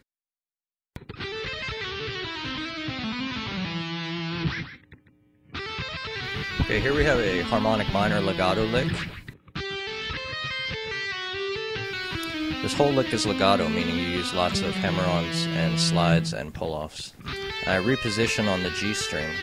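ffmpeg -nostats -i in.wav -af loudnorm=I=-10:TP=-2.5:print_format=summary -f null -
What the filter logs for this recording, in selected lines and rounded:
Input Integrated:    -26.2 LUFS
Input True Peak:      -5.2 dBTP
Input LRA:             6.7 LU
Input Threshold:     -36.5 LUFS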